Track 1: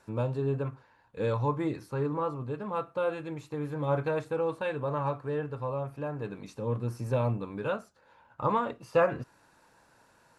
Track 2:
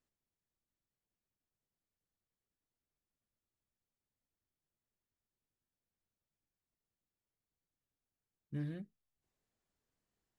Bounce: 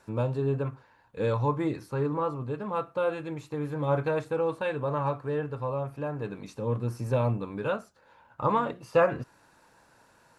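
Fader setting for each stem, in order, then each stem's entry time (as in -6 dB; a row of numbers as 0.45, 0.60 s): +2.0, -6.0 dB; 0.00, 0.00 s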